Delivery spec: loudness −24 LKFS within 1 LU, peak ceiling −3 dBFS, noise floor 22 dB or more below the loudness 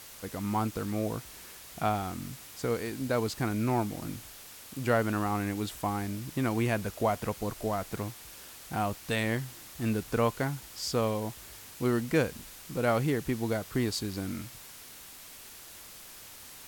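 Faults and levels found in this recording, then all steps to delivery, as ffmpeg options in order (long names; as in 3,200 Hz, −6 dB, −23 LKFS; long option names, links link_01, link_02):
background noise floor −49 dBFS; target noise floor −54 dBFS; integrated loudness −32.0 LKFS; sample peak −12.0 dBFS; target loudness −24.0 LKFS
→ -af "afftdn=noise_reduction=6:noise_floor=-49"
-af "volume=8dB"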